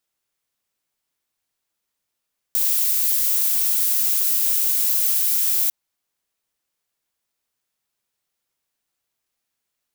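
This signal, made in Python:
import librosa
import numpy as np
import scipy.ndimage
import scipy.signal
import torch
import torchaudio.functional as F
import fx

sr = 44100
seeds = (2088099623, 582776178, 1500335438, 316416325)

y = fx.noise_colour(sr, seeds[0], length_s=3.15, colour='violet', level_db=-19.5)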